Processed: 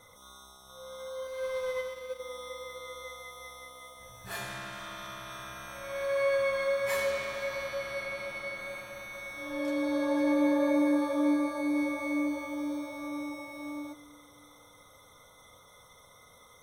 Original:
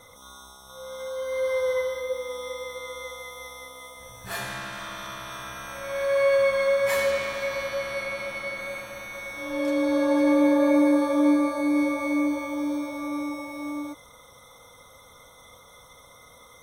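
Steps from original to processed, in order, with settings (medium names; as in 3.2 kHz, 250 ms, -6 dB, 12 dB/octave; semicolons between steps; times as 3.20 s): two-slope reverb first 0.22 s, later 3.9 s, from -21 dB, DRR 10.5 dB; 1.27–2.20 s: power-law waveshaper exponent 1.4; trim -6 dB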